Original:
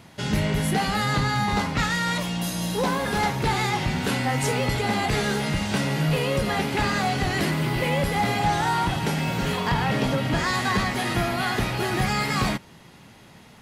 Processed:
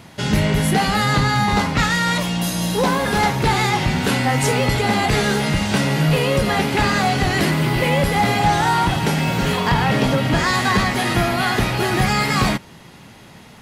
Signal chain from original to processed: 8.32–10.83 s: crackle 270 per s -43 dBFS; trim +6 dB

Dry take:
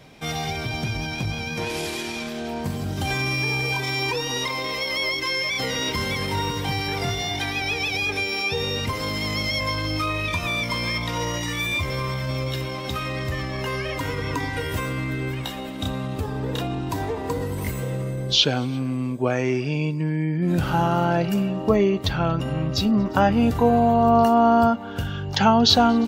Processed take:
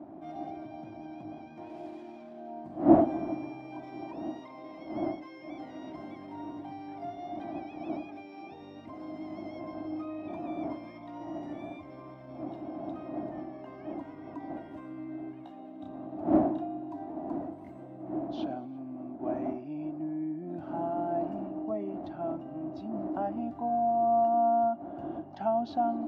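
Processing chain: wind noise 420 Hz -23 dBFS; two resonant band-passes 460 Hz, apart 1.1 oct; trim -5 dB

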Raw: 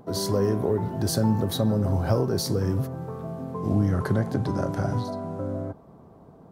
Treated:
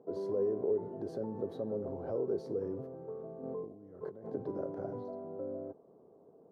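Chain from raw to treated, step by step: peak limiter -16.5 dBFS, peak gain reduction 5 dB; 3.43–4.30 s: compressor with a negative ratio -34 dBFS, ratio -1; band-pass filter 440 Hz, Q 2.7; trim -3 dB

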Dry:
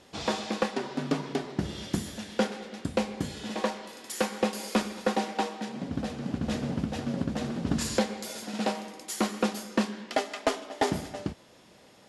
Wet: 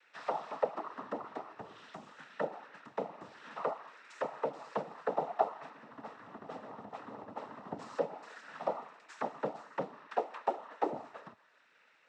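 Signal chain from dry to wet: auto-wah 580–1800 Hz, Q 3.4, down, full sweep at -22 dBFS; noise-vocoded speech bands 12; trim +1.5 dB

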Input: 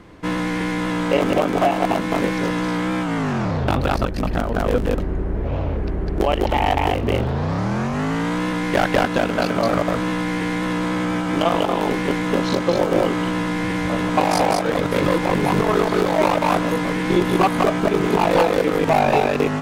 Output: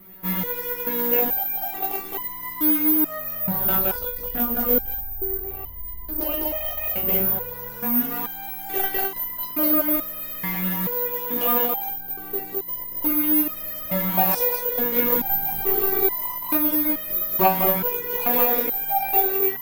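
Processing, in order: 11.90–13.01 s: median filter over 41 samples; 15.12–16.06 s: bass shelf 330 Hz +6.5 dB; careless resampling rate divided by 3×, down none, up zero stuff; resonator arpeggio 2.3 Hz 190–1000 Hz; trim +6 dB

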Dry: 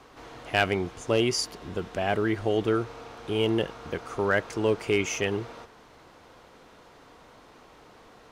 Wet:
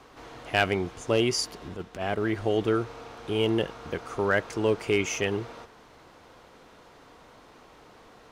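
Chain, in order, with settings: 1.68–2.35 s: transient shaper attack -11 dB, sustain -7 dB

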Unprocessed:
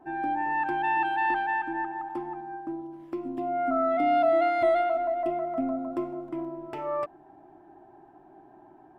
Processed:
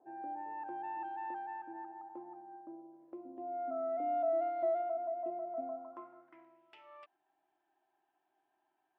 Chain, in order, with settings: band-pass sweep 540 Hz -> 3.1 kHz, 5.48–6.71 s; trim -6.5 dB

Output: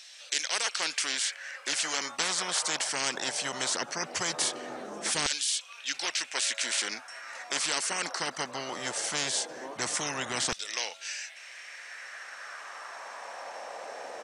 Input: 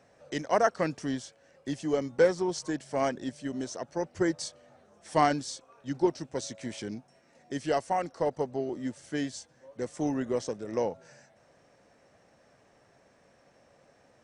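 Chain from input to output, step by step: LFO high-pass saw down 0.19 Hz 250–3700 Hz; resampled via 32 kHz; spectrum-flattening compressor 10:1

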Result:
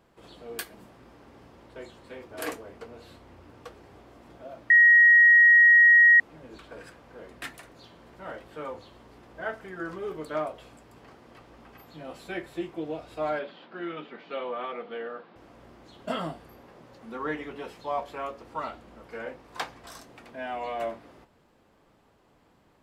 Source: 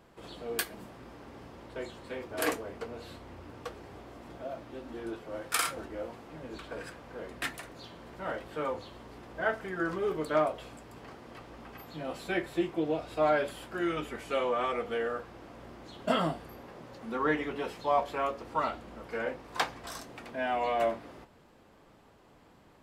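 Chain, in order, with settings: 4.70–6.20 s: bleep 1.89 kHz -9 dBFS; 13.39–15.36 s: elliptic band-pass 170–4100 Hz, stop band 40 dB; trim -3.5 dB

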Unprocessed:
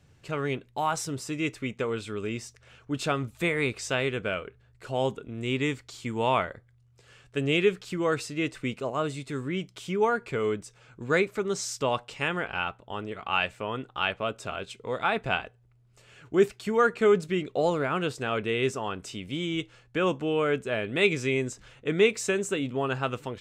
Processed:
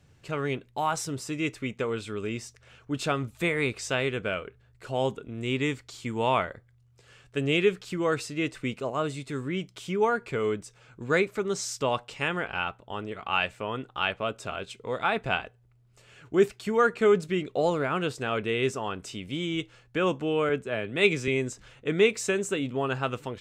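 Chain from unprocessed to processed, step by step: 20.49–21.28 s: three bands expanded up and down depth 40%

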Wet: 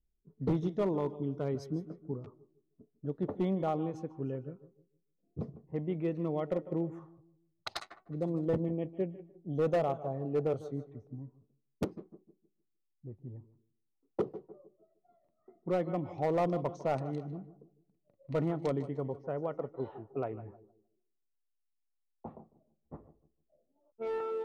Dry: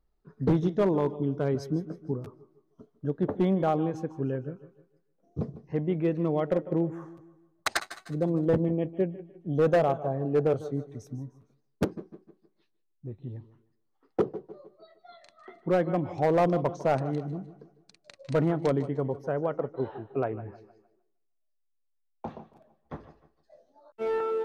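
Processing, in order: band-stop 1.6 kHz, Q 6.4; level-controlled noise filter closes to 300 Hz, open at -25.5 dBFS; 6.99–7.81 s: graphic EQ 125/250/500/2000/4000/8000 Hz +4/-8/-3/-8/+5/-10 dB; trim -6.5 dB

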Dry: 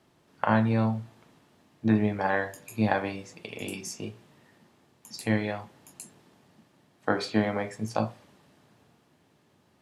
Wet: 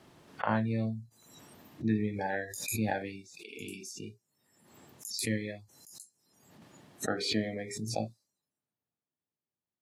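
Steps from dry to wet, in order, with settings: spectral noise reduction 27 dB; swell ahead of each attack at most 51 dB/s; trim -7 dB

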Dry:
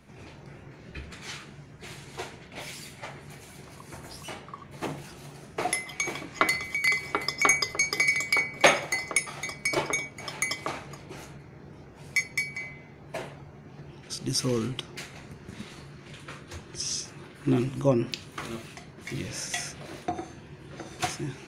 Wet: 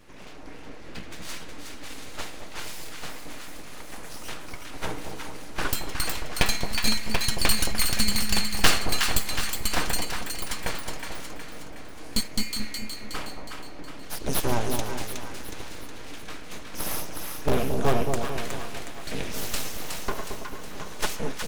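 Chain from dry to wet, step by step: comb 6.5 ms, depth 40%; in parallel at -12 dB: integer overflow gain 14.5 dB; on the sum: time-frequency box 10.05–10.51 s, 430–8100 Hz -27 dB; full-wave rectifier; on a send: two-band feedback delay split 940 Hz, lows 222 ms, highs 366 ms, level -5 dB; on the sum: trim +2 dB

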